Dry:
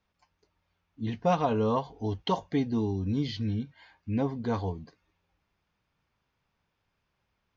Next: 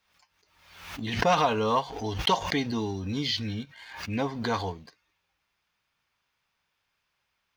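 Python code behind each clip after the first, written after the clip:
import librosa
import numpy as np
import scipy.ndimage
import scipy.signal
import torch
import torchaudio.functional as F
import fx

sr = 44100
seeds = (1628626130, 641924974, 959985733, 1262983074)

y = fx.tilt_shelf(x, sr, db=-8.0, hz=760.0)
y = fx.leveller(y, sr, passes=1)
y = fx.pre_swell(y, sr, db_per_s=66.0)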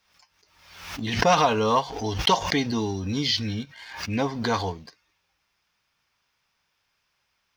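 y = fx.peak_eq(x, sr, hz=5400.0, db=6.5, octaves=0.34)
y = F.gain(torch.from_numpy(y), 3.5).numpy()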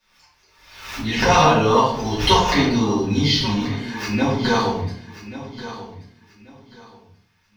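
y = fx.echo_feedback(x, sr, ms=1135, feedback_pct=25, wet_db=-14)
y = fx.room_shoebox(y, sr, seeds[0], volume_m3=92.0, walls='mixed', distance_m=2.5)
y = F.gain(torch.from_numpy(y), -4.5).numpy()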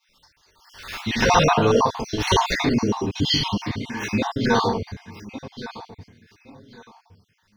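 y = fx.spec_dropout(x, sr, seeds[1], share_pct=37)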